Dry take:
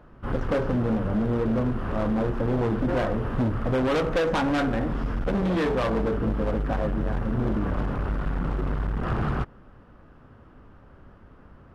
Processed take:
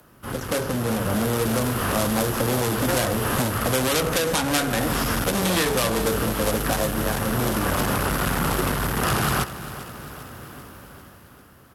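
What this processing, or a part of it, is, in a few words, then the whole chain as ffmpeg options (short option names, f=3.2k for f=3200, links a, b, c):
FM broadcast chain: -filter_complex "[0:a]highpass=73,dynaudnorm=f=130:g=17:m=13dB,acrossover=split=130|460|3200[a][b][c][d];[a]acompressor=threshold=-26dB:ratio=4[e];[b]acompressor=threshold=-26dB:ratio=4[f];[c]acompressor=threshold=-22dB:ratio=4[g];[d]acompressor=threshold=-39dB:ratio=4[h];[e][f][g][h]amix=inputs=4:normalize=0,aemphasis=mode=production:type=75fm,alimiter=limit=-12dB:level=0:latency=1:release=361,asoftclip=type=hard:threshold=-15dB,lowpass=f=15k:w=0.5412,lowpass=f=15k:w=1.3066,aemphasis=mode=production:type=75fm,aecho=1:1:396|792|1188|1584|1980|2376:0.188|0.109|0.0634|0.0368|0.0213|0.0124"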